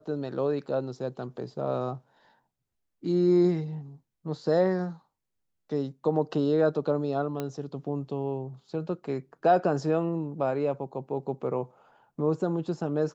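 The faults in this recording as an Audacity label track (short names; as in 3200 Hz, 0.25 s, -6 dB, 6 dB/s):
7.400000	7.400000	pop -18 dBFS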